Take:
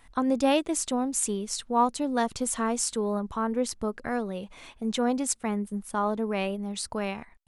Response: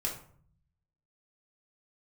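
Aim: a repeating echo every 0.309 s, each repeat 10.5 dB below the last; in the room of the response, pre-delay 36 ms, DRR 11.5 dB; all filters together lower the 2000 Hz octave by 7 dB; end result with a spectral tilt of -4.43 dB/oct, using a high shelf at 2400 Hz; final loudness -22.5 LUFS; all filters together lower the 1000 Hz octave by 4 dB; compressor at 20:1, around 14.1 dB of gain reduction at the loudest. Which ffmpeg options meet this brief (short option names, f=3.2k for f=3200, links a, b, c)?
-filter_complex "[0:a]equalizer=f=1k:t=o:g=-3,equalizer=f=2k:t=o:g=-4.5,highshelf=f=2.4k:g=-7.5,acompressor=threshold=-33dB:ratio=20,aecho=1:1:309|618|927:0.299|0.0896|0.0269,asplit=2[a][b];[1:a]atrim=start_sample=2205,adelay=36[c];[b][c]afir=irnorm=-1:irlink=0,volume=-15dB[d];[a][d]amix=inputs=2:normalize=0,volume=15.5dB"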